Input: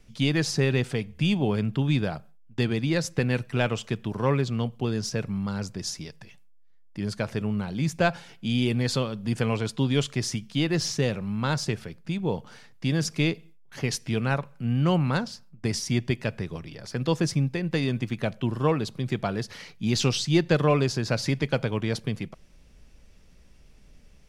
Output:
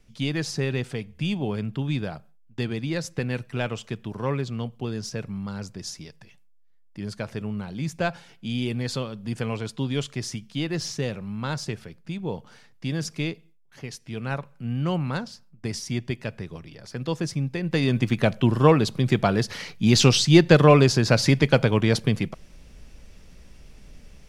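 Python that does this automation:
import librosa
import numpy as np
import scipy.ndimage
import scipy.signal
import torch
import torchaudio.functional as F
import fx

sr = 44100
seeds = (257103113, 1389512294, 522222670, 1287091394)

y = fx.gain(x, sr, db=fx.line((13.11, -3.0), (13.99, -10.0), (14.34, -3.0), (17.36, -3.0), (18.08, 7.0)))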